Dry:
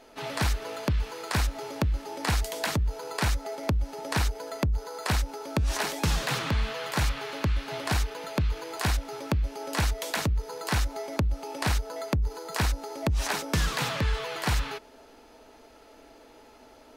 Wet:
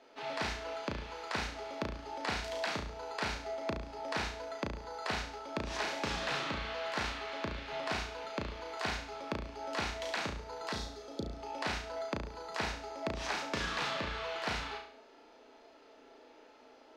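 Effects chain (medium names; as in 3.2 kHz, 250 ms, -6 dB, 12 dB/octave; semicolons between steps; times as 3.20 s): three-band isolator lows -15 dB, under 220 Hz, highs -23 dB, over 6 kHz; spectral replace 10.74–11.31 s, 580–3200 Hz after; flutter echo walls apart 6 m, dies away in 0.52 s; trim -6.5 dB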